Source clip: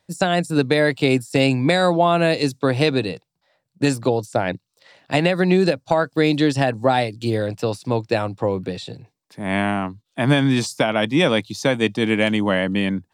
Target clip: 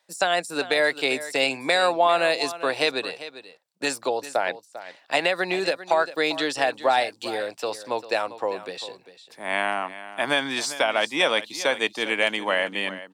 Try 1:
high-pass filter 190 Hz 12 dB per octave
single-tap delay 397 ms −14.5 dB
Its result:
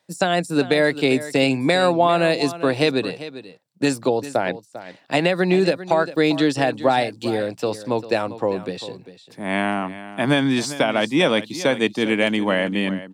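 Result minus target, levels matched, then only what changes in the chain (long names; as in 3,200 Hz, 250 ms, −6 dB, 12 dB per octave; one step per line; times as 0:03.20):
250 Hz band +9.5 dB
change: high-pass filter 620 Hz 12 dB per octave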